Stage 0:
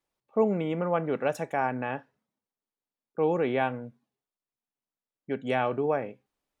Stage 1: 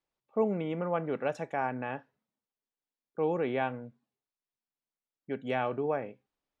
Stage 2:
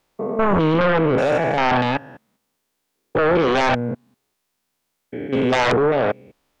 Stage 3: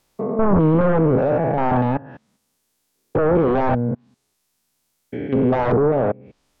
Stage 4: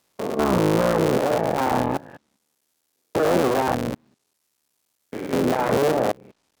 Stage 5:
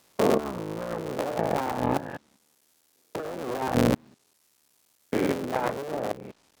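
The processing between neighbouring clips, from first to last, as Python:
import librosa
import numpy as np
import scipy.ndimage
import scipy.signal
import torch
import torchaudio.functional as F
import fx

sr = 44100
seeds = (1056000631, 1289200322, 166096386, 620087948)

y1 = scipy.signal.sosfilt(scipy.signal.butter(2, 5900.0, 'lowpass', fs=sr, output='sos'), x)
y1 = y1 * 10.0 ** (-4.0 / 20.0)
y2 = fx.spec_steps(y1, sr, hold_ms=200)
y2 = fx.fold_sine(y2, sr, drive_db=12, ceiling_db=-19.0)
y2 = y2 * 10.0 ** (6.0 / 20.0)
y3 = fx.env_lowpass_down(y2, sr, base_hz=1000.0, full_db=-19.5)
y3 = fx.bass_treble(y3, sr, bass_db=5, treble_db=7)
y4 = fx.cycle_switch(y3, sr, every=3, mode='muted')
y4 = fx.highpass(y4, sr, hz=210.0, slope=6)
y5 = fx.over_compress(y4, sr, threshold_db=-26.0, ratio=-0.5)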